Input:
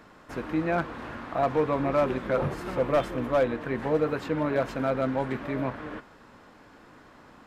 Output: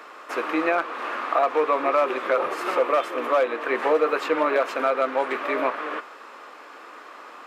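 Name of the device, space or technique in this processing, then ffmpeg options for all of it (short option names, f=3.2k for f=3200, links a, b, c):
laptop speaker: -af "highpass=f=370:w=0.5412,highpass=f=370:w=1.3066,equalizer=f=1.2k:t=o:w=0.24:g=9,equalizer=f=2.5k:t=o:w=0.55:g=5,alimiter=limit=-19.5dB:level=0:latency=1:release=332,volume=8.5dB"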